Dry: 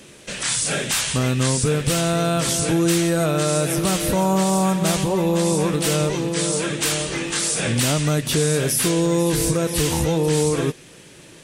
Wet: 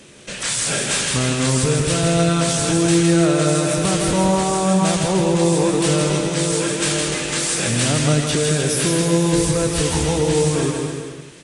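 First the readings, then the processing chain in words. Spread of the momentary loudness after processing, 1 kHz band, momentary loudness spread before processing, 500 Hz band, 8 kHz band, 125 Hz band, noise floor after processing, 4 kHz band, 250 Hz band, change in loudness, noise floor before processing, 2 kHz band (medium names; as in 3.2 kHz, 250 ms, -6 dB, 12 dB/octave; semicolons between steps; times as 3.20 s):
4 LU, +2.0 dB, 3 LU, +2.0 dB, +2.0 dB, +2.5 dB, -33 dBFS, +2.0 dB, +2.5 dB, +2.0 dB, -45 dBFS, +2.0 dB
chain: on a send: bouncing-ball echo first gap 160 ms, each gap 0.85×, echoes 5; on the sum: resampled via 22.05 kHz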